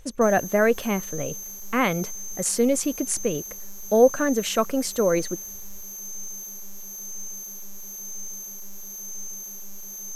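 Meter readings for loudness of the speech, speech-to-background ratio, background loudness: −23.5 LKFS, 11.5 dB, −35.0 LKFS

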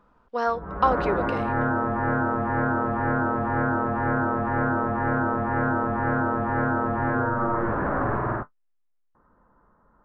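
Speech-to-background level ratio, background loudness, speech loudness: −2.0 dB, −25.0 LKFS, −27.0 LKFS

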